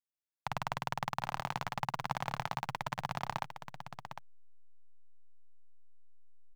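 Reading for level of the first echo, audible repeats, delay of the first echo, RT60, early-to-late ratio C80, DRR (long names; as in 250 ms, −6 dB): −9.5 dB, 1, 754 ms, no reverb audible, no reverb audible, no reverb audible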